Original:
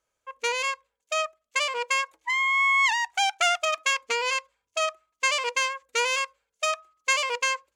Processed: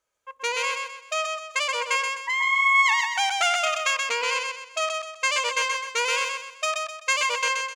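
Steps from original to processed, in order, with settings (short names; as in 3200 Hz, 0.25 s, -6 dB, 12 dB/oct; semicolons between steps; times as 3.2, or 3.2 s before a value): low shelf 310 Hz -5 dB; feedback echo 0.128 s, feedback 37%, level -4 dB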